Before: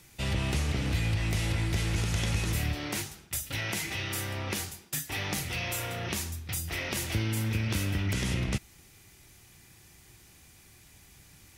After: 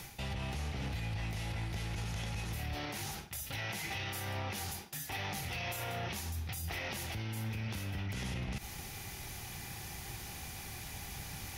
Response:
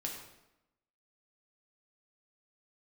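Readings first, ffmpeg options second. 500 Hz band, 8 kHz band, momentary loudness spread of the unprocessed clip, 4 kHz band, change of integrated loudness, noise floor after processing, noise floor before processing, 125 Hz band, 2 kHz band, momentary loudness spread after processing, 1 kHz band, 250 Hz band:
−6.5 dB, −7.5 dB, 5 LU, −6.5 dB, −8.5 dB, −46 dBFS, −57 dBFS, −8.0 dB, −6.0 dB, 6 LU, −2.0 dB, −9.0 dB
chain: -af "areverse,acompressor=threshold=-40dB:ratio=12,areverse,alimiter=level_in=18dB:limit=-24dB:level=0:latency=1:release=70,volume=-18dB,equalizer=frequency=315:width_type=o:width=0.33:gain=-5,equalizer=frequency=800:width_type=o:width=0.33:gain=8,equalizer=frequency=8000:width_type=o:width=0.33:gain=-7,volume=11.5dB"

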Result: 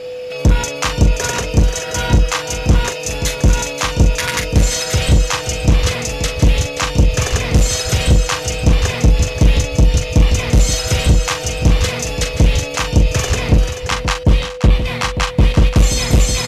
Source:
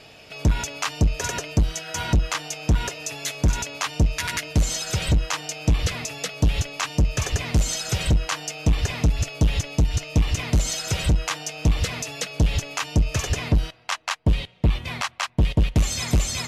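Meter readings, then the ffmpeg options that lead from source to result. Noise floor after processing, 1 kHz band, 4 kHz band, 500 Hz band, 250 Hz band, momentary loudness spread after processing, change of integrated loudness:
−26 dBFS, +8.5 dB, +8.0 dB, +12.5 dB, +8.0 dB, 4 LU, +8.5 dB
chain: -filter_complex "[0:a]asplit=2[link_01][link_02];[link_02]aecho=0:1:392:0.178[link_03];[link_01][link_03]amix=inputs=2:normalize=0,aeval=exprs='val(0)+0.02*sin(2*PI*500*n/s)':channel_layout=same,asplit=2[link_04][link_05];[link_05]aecho=0:1:42|529:0.422|0.335[link_06];[link_04][link_06]amix=inputs=2:normalize=0,volume=7dB"

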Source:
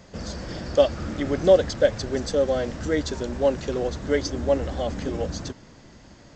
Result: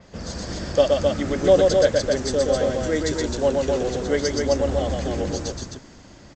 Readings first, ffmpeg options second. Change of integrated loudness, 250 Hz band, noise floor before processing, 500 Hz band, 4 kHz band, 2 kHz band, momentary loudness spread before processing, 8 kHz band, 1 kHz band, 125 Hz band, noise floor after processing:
+2.5 dB, +2.5 dB, −50 dBFS, +2.5 dB, +4.5 dB, +3.0 dB, 15 LU, +7.0 dB, +3.0 dB, +2.5 dB, −47 dBFS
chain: -filter_complex "[0:a]asplit=2[link_01][link_02];[link_02]aecho=0:1:122.4|262.4:0.708|0.631[link_03];[link_01][link_03]amix=inputs=2:normalize=0,adynamicequalizer=threshold=0.00562:dfrequency=5700:dqfactor=0.7:tfrequency=5700:tqfactor=0.7:attack=5:release=100:ratio=0.375:range=3.5:mode=boostabove:tftype=highshelf"

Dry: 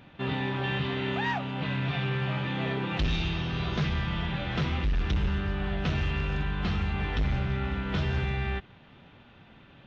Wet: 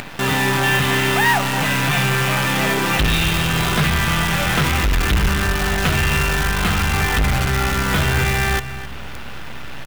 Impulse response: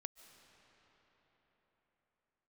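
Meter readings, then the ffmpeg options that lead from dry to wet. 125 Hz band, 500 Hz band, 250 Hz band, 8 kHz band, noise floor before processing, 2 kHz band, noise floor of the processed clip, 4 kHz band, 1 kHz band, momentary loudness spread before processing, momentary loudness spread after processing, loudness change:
+9.0 dB, +11.5 dB, +9.0 dB, can't be measured, −54 dBFS, +16.0 dB, −29 dBFS, +15.0 dB, +15.0 dB, 2 LU, 6 LU, +12.5 dB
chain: -filter_complex "[0:a]equalizer=frequency=1600:width=0.51:gain=8,acompressor=mode=upward:threshold=-30dB:ratio=2.5,asoftclip=type=tanh:threshold=-17dB,acrusher=bits=6:dc=4:mix=0:aa=0.000001,asplit=2[link_01][link_02];[link_02]adelay=262.4,volume=-12dB,highshelf=frequency=4000:gain=-5.9[link_03];[link_01][link_03]amix=inputs=2:normalize=0,asplit=2[link_04][link_05];[1:a]atrim=start_sample=2205[link_06];[link_05][link_06]afir=irnorm=-1:irlink=0,volume=1dB[link_07];[link_04][link_07]amix=inputs=2:normalize=0,volume=5dB"

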